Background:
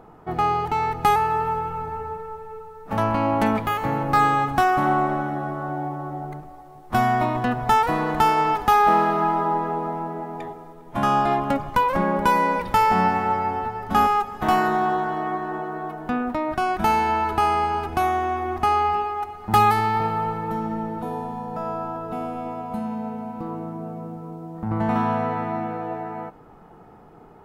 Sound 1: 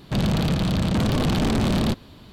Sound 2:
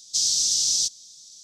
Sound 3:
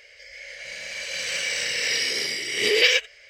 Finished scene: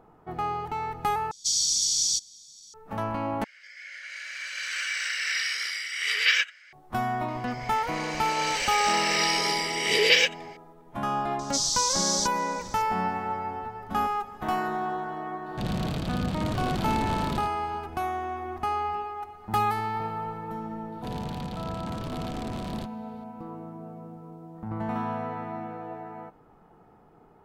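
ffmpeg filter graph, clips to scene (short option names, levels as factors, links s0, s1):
-filter_complex "[2:a]asplit=2[s0][s1];[3:a]asplit=2[s2][s3];[1:a]asplit=2[s4][s5];[0:a]volume=0.376[s6];[s0]aecho=1:1:0.9:0.47[s7];[s2]highpass=f=1400:t=q:w=4.8[s8];[s1]acompressor=mode=upward:threshold=0.0224:ratio=2.5:attack=3.2:release=140:knee=2.83:detection=peak[s9];[s4]aecho=1:1:79:0.447[s10];[s6]asplit=3[s11][s12][s13];[s11]atrim=end=1.314[s14];[s7]atrim=end=1.43,asetpts=PTS-STARTPTS,volume=0.668[s15];[s12]atrim=start=2.736:end=3.444[s16];[s8]atrim=end=3.29,asetpts=PTS-STARTPTS,volume=0.447[s17];[s13]atrim=start=6.726[s18];[s3]atrim=end=3.29,asetpts=PTS-STARTPTS,volume=0.841,afade=t=in:d=0.004:c=hsin,afade=t=out:st=3.286:d=0.004:c=hsin,adelay=7280[s19];[s9]atrim=end=1.43,asetpts=PTS-STARTPTS,volume=0.596,afade=t=in:d=0.004:c=hsin,afade=t=out:st=1.426:d=0.004:c=hsin,adelay=11390[s20];[s10]atrim=end=2.32,asetpts=PTS-STARTPTS,volume=0.355,afade=t=in:d=0.004:c=hsin,afade=t=out:st=2.316:d=0.004:c=hsin,adelay=15460[s21];[s5]atrim=end=2.32,asetpts=PTS-STARTPTS,volume=0.2,afade=t=in:d=0.004:c=hsin,afade=t=out:st=2.316:d=0.004:c=hsin,adelay=20920[s22];[s14][s15]acrossfade=d=0.004:c1=hsin:c2=hsin[s23];[s23][s16]acrossfade=d=0.004:c1=hsin:c2=hsin[s24];[s24][s17]acrossfade=d=0.004:c1=hsin:c2=hsin[s25];[s25][s18]acrossfade=d=0.004:c1=hsin:c2=hsin[s26];[s26][s19][s20][s21][s22]amix=inputs=5:normalize=0"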